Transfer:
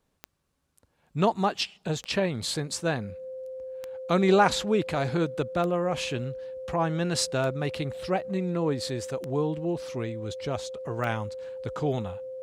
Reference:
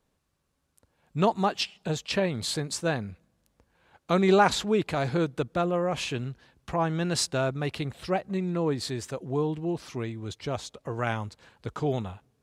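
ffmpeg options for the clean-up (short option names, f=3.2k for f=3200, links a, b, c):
-af "adeclick=t=4,bandreject=f=520:w=30"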